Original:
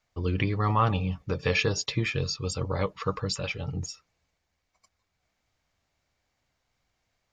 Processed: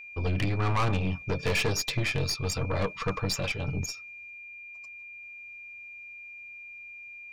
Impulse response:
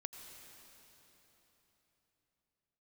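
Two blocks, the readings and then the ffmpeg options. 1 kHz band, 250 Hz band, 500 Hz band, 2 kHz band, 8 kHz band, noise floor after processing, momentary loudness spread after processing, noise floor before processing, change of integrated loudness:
-3.0 dB, -1.5 dB, -1.5 dB, +1.5 dB, +2.0 dB, -45 dBFS, 15 LU, -79 dBFS, -1.0 dB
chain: -af "aeval=exprs='(tanh(25.1*val(0)+0.55)-tanh(0.55))/25.1':c=same,aeval=exprs='val(0)+0.00447*sin(2*PI*2400*n/s)':c=same,volume=1.78"

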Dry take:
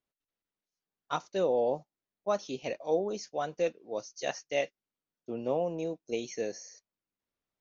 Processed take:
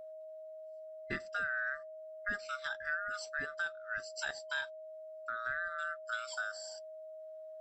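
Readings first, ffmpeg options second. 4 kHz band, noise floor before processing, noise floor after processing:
-2.0 dB, under -85 dBFS, -49 dBFS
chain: -af "afftfilt=real='real(if(lt(b,960),b+48*(1-2*mod(floor(b/48),2)),b),0)':imag='imag(if(lt(b,960),b+48*(1-2*mod(floor(b/48),2)),b),0)':win_size=2048:overlap=0.75,acompressor=threshold=0.00794:ratio=3,aeval=exprs='val(0)+0.00355*sin(2*PI*630*n/s)':c=same,volume=1.5"

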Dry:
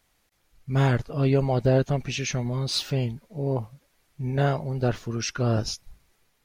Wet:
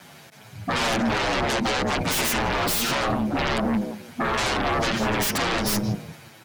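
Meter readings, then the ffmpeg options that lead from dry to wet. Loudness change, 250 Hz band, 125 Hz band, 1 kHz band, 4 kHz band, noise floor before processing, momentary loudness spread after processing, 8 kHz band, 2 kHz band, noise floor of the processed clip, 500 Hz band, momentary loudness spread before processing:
+2.5 dB, +3.5 dB, -7.5 dB, +9.5 dB, +7.0 dB, -69 dBFS, 6 LU, +7.5 dB, +11.0 dB, -48 dBFS, 0.0 dB, 9 LU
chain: -filter_complex "[0:a]highshelf=f=4900:g=-8,aecho=1:1:1.3:0.31,asplit=2[s0][s1];[s1]adelay=172,lowpass=f=830:p=1,volume=0.188,asplit=2[s2][s3];[s3]adelay=172,lowpass=f=830:p=1,volume=0.24,asplit=2[s4][s5];[s5]adelay=172,lowpass=f=830:p=1,volume=0.24[s6];[s2][s4][s6]amix=inputs=3:normalize=0[s7];[s0][s7]amix=inputs=2:normalize=0,aeval=exprs='val(0)*sin(2*PI*99*n/s)':c=same,highpass=f=140:w=0.5412,highpass=f=140:w=1.3066,asplit=2[s8][s9];[s9]asoftclip=type=hard:threshold=0.0596,volume=0.251[s10];[s8][s10]amix=inputs=2:normalize=0,acompressor=threshold=0.0282:ratio=8,aeval=exprs='0.0794*sin(PI/2*10*val(0)/0.0794)':c=same,asplit=2[s11][s12];[s12]adelay=8,afreqshift=-1.5[s13];[s11][s13]amix=inputs=2:normalize=1,volume=1.68"

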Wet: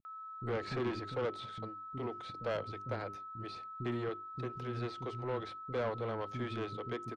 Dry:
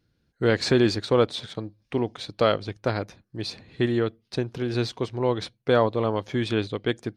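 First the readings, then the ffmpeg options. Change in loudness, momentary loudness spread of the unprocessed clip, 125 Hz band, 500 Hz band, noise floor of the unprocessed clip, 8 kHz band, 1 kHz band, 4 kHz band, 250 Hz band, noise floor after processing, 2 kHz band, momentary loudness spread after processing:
-14.0 dB, 12 LU, -12.5 dB, -14.5 dB, -72 dBFS, under -20 dB, -9.0 dB, -18.0 dB, -15.5 dB, -47 dBFS, -13.5 dB, 7 LU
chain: -filter_complex "[0:a]acrossover=split=2900[s0][s1];[s1]acompressor=threshold=0.00355:ratio=4:attack=1:release=60[s2];[s0][s2]amix=inputs=2:normalize=0,agate=range=0.0398:threshold=0.00708:ratio=16:detection=peak,bandreject=f=50:t=h:w=6,bandreject=f=100:t=h:w=6,bandreject=f=150:t=h:w=6,bandreject=f=200:t=h:w=6,bandreject=f=250:t=h:w=6,bandreject=f=300:t=h:w=6,bandreject=f=350:t=h:w=6,bandreject=f=400:t=h:w=6,acrossover=split=310|1000|2500[s3][s4][s5][s6];[s5]alimiter=level_in=1.58:limit=0.0631:level=0:latency=1,volume=0.631[s7];[s3][s4][s7][s6]amix=inputs=4:normalize=0,aeval=exprs='val(0)+0.0178*sin(2*PI*1300*n/s)':c=same,asoftclip=type=tanh:threshold=0.1,acrossover=split=270[s8][s9];[s9]adelay=50[s10];[s8][s10]amix=inputs=2:normalize=0,volume=0.355"

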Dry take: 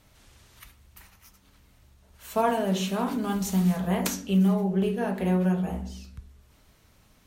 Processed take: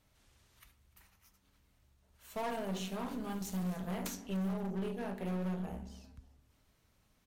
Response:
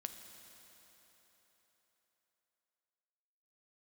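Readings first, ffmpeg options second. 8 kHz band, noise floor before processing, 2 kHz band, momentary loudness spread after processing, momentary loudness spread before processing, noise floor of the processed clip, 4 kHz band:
-11.5 dB, -61 dBFS, -11.0 dB, 10 LU, 9 LU, -73 dBFS, -11.5 dB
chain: -filter_complex "[0:a]aeval=exprs='0.299*(cos(1*acos(clip(val(0)/0.299,-1,1)))-cos(1*PI/2))+0.106*(cos(2*acos(clip(val(0)/0.299,-1,1)))-cos(2*PI/2))+0.075*(cos(3*acos(clip(val(0)/0.299,-1,1)))-cos(3*PI/2))+0.0168*(cos(4*acos(clip(val(0)/0.299,-1,1)))-cos(4*PI/2))+0.00596*(cos(6*acos(clip(val(0)/0.299,-1,1)))-cos(6*PI/2))':c=same,asoftclip=type=tanh:threshold=0.0944,asplit=2[s0][s1];[s1]asplit=2[s2][s3];[s2]adelay=296,afreqshift=37,volume=0.0708[s4];[s3]adelay=592,afreqshift=74,volume=0.0248[s5];[s4][s5]amix=inputs=2:normalize=0[s6];[s0][s6]amix=inputs=2:normalize=0,asoftclip=type=hard:threshold=0.0251"

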